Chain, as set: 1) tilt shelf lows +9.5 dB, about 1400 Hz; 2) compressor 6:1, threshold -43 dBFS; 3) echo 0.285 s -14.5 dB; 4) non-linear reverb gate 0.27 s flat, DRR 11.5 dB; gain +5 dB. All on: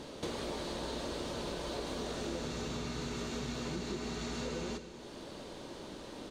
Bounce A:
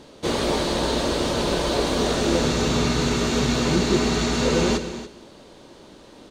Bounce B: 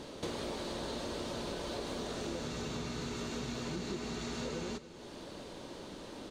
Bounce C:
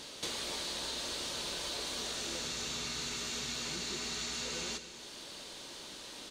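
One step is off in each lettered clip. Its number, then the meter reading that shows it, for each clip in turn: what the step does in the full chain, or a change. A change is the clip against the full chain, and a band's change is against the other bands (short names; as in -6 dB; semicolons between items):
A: 2, mean gain reduction 12.5 dB; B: 4, echo-to-direct -9.5 dB to -14.5 dB; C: 1, 8 kHz band +13.5 dB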